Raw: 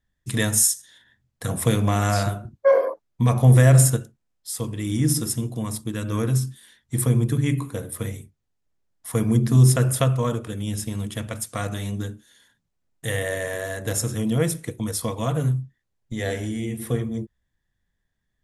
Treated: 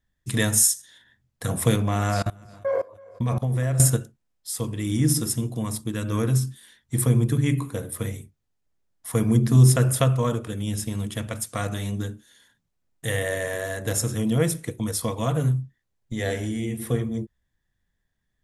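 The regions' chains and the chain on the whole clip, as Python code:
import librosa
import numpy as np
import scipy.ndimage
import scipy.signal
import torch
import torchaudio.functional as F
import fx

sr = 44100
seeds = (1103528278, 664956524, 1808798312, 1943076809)

y = fx.chain(x, sr, fx.high_shelf(hz=5700.0, db=-5.5),
    fx.echo_feedback(ms=328, feedback_pct=38, wet_db=-17.5),
    fx.level_steps(step_db=23), at=(1.76, 3.8))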